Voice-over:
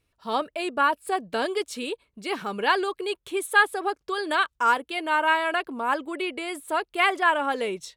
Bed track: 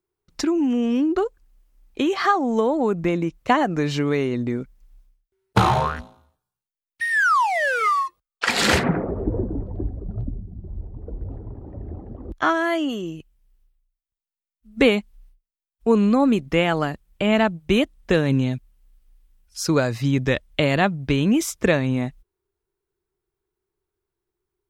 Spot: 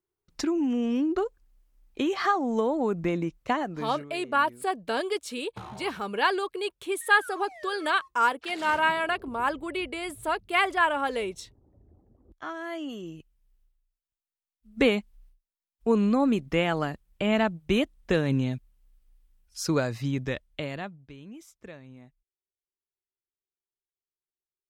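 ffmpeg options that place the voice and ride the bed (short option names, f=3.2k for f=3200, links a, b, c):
-filter_complex "[0:a]adelay=3550,volume=-2dB[a];[1:a]volume=13.5dB,afade=t=out:st=3.24:d=0.86:silence=0.112202,afade=t=in:st=12.25:d=1.31:silence=0.112202,afade=t=out:st=19.7:d=1.38:silence=0.0944061[b];[a][b]amix=inputs=2:normalize=0"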